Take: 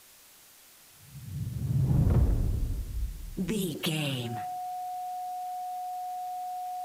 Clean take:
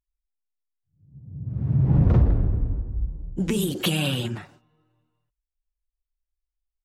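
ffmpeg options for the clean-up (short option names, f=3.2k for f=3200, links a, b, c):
-af "bandreject=f=730:w=30,afwtdn=0.002,asetnsamples=n=441:p=0,asendcmd='1.47 volume volume 6.5dB',volume=0dB"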